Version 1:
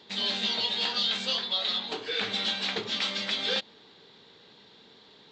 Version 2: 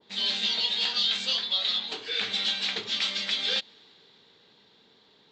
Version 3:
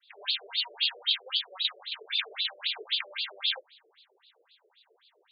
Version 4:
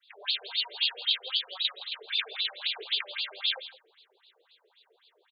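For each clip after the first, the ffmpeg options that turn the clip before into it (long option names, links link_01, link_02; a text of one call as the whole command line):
ffmpeg -i in.wav -af "adynamicequalizer=threshold=0.00562:dfrequency=1600:dqfactor=0.7:tfrequency=1600:tqfactor=0.7:attack=5:release=100:ratio=0.375:range=4:mode=boostabove:tftype=highshelf,volume=-5.5dB" out.wav
ffmpeg -i in.wav -af "afftfilt=real='re*between(b*sr/1024,450*pow(3600/450,0.5+0.5*sin(2*PI*3.8*pts/sr))/1.41,450*pow(3600/450,0.5+0.5*sin(2*PI*3.8*pts/sr))*1.41)':imag='im*between(b*sr/1024,450*pow(3600/450,0.5+0.5*sin(2*PI*3.8*pts/sr))/1.41,450*pow(3600/450,0.5+0.5*sin(2*PI*3.8*pts/sr))*1.41)':win_size=1024:overlap=0.75,volume=2dB" out.wav
ffmpeg -i in.wav -af "aecho=1:1:166:0.168" out.wav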